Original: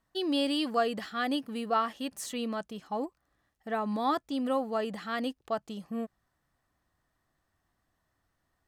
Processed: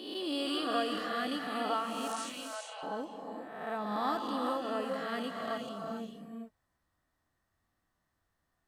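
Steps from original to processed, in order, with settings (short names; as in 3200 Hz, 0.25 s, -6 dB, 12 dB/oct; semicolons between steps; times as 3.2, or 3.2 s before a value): spectral swells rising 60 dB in 1.14 s; 2.12–2.83 Chebyshev band-pass 580–9700 Hz, order 4; non-linear reverb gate 0.45 s rising, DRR 2.5 dB; gain -7.5 dB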